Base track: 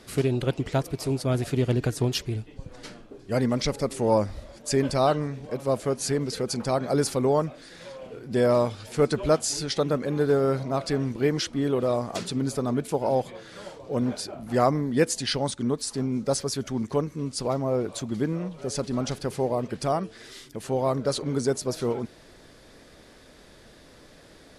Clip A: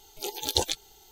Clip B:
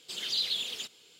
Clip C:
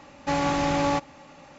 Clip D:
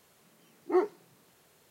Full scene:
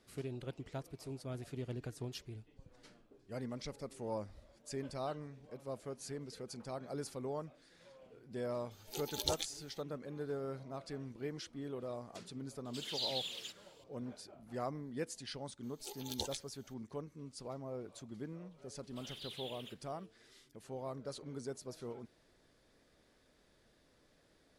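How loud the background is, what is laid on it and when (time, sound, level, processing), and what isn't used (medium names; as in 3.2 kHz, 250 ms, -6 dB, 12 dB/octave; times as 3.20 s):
base track -18.5 dB
8.71 s: add A -10.5 dB
12.65 s: add B -8.5 dB
15.63 s: add A -15 dB
18.87 s: add B -13.5 dB + high-order bell 5.7 kHz -12.5 dB 1.1 oct
not used: C, D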